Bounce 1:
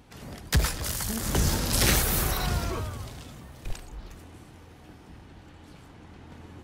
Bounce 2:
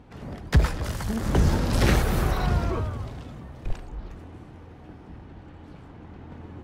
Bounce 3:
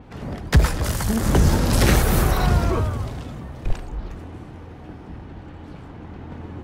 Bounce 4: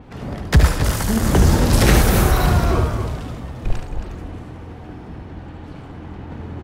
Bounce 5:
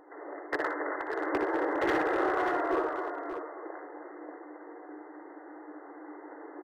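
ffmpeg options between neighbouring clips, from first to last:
-af "lowpass=f=1.2k:p=1,volume=5dB"
-filter_complex "[0:a]asplit=2[a][b];[b]alimiter=limit=-15.5dB:level=0:latency=1:release=238,volume=0.5dB[c];[a][c]amix=inputs=2:normalize=0,adynamicequalizer=threshold=0.00501:dfrequency=6100:dqfactor=0.7:tfrequency=6100:tqfactor=0.7:attack=5:release=100:ratio=0.375:range=3.5:mode=boostabove:tftype=highshelf"
-af "aecho=1:1:72.89|271.1:0.447|0.355,volume=2dB"
-af "afftfilt=real='re*between(b*sr/4096,280,2100)':imag='im*between(b*sr/4096,280,2100)':win_size=4096:overlap=0.75,volume=16.5dB,asoftclip=hard,volume=-16.5dB,aecho=1:1:60|586:0.335|0.398,volume=-7dB"

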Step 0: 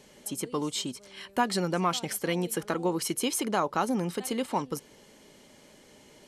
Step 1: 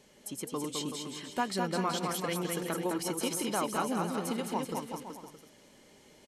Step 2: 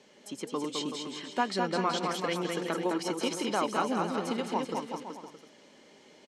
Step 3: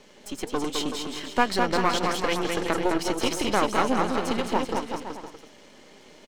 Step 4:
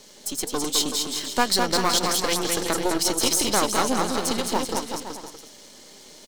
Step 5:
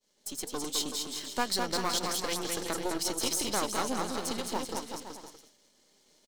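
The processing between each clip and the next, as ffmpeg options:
-af "aecho=1:1:210|378|512.4|619.9|705.9:0.631|0.398|0.251|0.158|0.1,volume=-5.5dB"
-filter_complex "[0:a]acrossover=split=170 7000:gain=0.126 1 0.0891[a][b][c];[a][b][c]amix=inputs=3:normalize=0,volume=3dB"
-af "aeval=exprs='if(lt(val(0),0),0.251*val(0),val(0))':c=same,volume=9dB"
-af "aexciter=amount=4.1:drive=4.6:freq=3.7k"
-af "agate=range=-33dB:threshold=-38dB:ratio=3:detection=peak,volume=-9dB"

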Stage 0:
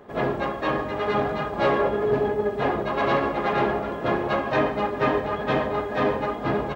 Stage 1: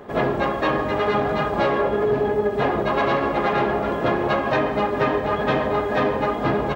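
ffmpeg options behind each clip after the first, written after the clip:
-af "acompressor=threshold=-24dB:ratio=6,volume=7dB"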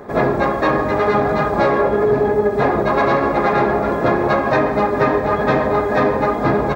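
-af "equalizer=f=3k:t=o:w=0.3:g=-14.5,volume=5dB"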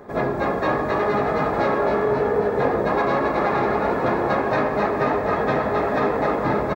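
-filter_complex "[0:a]asplit=9[a][b][c][d][e][f][g][h][i];[b]adelay=270,afreqshift=49,volume=-4.5dB[j];[c]adelay=540,afreqshift=98,volume=-9.1dB[k];[d]adelay=810,afreqshift=147,volume=-13.7dB[l];[e]adelay=1080,afreqshift=196,volume=-18.2dB[m];[f]adelay=1350,afreqshift=245,volume=-22.8dB[n];[g]adelay=1620,afreqshift=294,volume=-27.4dB[o];[h]adelay=1890,afreqshift=343,volume=-32dB[p];[i]adelay=2160,afreqshift=392,volume=-36.6dB[q];[a][j][k][l][m][n][o][p][q]amix=inputs=9:normalize=0,volume=-6.5dB"

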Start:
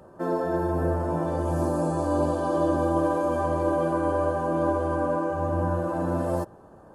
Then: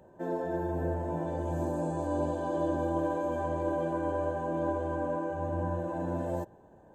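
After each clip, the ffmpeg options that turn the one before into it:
-af "superequalizer=10b=0.251:14b=0.398:16b=0.251,volume=-6.5dB"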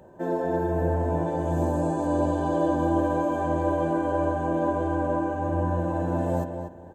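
-filter_complex "[0:a]asplit=2[a][b];[b]adelay=241,lowpass=f=3.7k:p=1,volume=-7dB,asplit=2[c][d];[d]adelay=241,lowpass=f=3.7k:p=1,volume=0.23,asplit=2[e][f];[f]adelay=241,lowpass=f=3.7k:p=1,volume=0.23[g];[a][c][e][g]amix=inputs=4:normalize=0,volume=6dB"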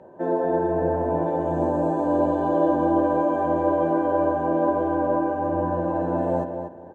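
-af "bandpass=f=580:t=q:w=0.51:csg=0,volume=4.5dB"

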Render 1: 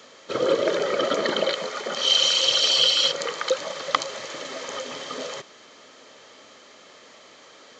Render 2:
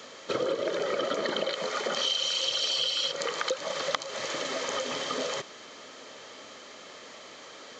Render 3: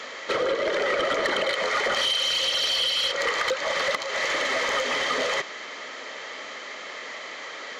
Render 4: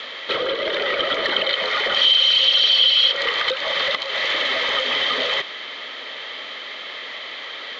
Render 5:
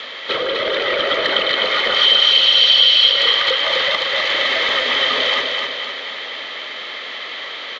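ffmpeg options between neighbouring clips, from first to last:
-af "acompressor=threshold=-29dB:ratio=6,volume=2.5dB"
-filter_complex "[0:a]asplit=2[a][b];[b]highpass=f=720:p=1,volume=16dB,asoftclip=type=tanh:threshold=-9dB[c];[a][c]amix=inputs=2:normalize=0,lowpass=f=2.9k:p=1,volume=-6dB,equalizer=f=2k:t=o:w=0.28:g=9,asoftclip=type=tanh:threshold=-17.5dB"
-af "lowpass=f=3.5k:t=q:w=3.7"
-af "aecho=1:1:253|506|759|1012|1265|1518|1771:0.631|0.322|0.164|0.0837|0.0427|0.0218|0.0111,volume=2dB"

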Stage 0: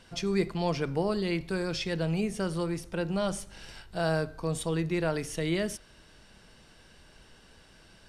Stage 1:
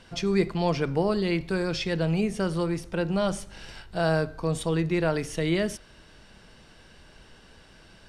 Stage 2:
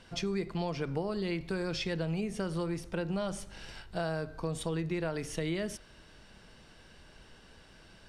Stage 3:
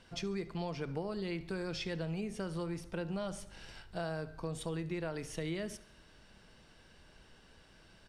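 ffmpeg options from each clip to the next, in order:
-af "highshelf=f=7.6k:g=-7.5,volume=4dB"
-af "acompressor=threshold=-26dB:ratio=6,volume=-3.5dB"
-af "aecho=1:1:70|140|210|280:0.1|0.051|0.026|0.0133,volume=-4.5dB"

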